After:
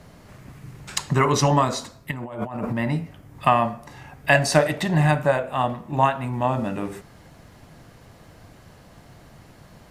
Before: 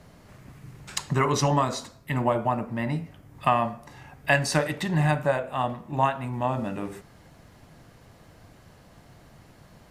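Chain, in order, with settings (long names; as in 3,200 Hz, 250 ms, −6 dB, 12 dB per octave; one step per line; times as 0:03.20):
0:02.11–0:02.73: compressor whose output falls as the input rises −35 dBFS, ratio −1
0:04.35–0:04.98: parametric band 660 Hz +13 dB 0.21 octaves
level +4 dB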